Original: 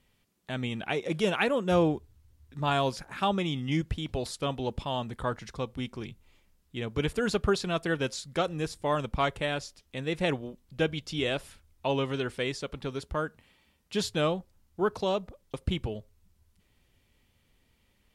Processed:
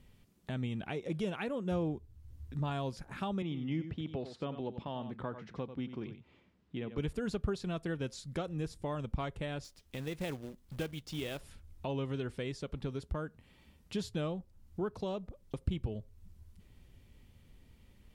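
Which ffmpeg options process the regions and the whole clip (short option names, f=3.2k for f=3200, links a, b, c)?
-filter_complex "[0:a]asettb=1/sr,asplit=3[a][b][c];[a]atrim=end=3.424[d];[b]atrim=start=3.42:end=6.98,asetpts=PTS-STARTPTS,afade=t=in:d=0.004:c=qsin,afade=t=out:st=3.556:d=0.004:c=qsin,highpass=170,lowpass=3.2k,aecho=1:1:91:0.266,atrim=end_sample=156996[e];[c]atrim=start=6.976[f];[d][e]acrossfade=d=0.004:c1=hsin:c2=qsin[g];[g][f]acrossfade=d=0.004:c1=qsin:c2=hsin,asettb=1/sr,asplit=3[h][i][j];[h]atrim=end=9.644[k];[i]atrim=start=9.64:end=11.41,asetpts=PTS-STARTPTS,afade=t=in:d=0.004:c=qsin,afade=t=out:st=1.766:d=0.004:c=qsin,lowshelf=f=440:g=-6,acrusher=bits=2:mode=log:mix=0:aa=0.000001[l];[j]atrim=start=11.406[m];[k][l]acrossfade=d=0.004:c1=hsin:c2=qsin[n];[n][m]acrossfade=d=0.004:c1=qsin:c2=hsin,acompressor=threshold=-50dB:ratio=2,lowshelf=f=370:g=11"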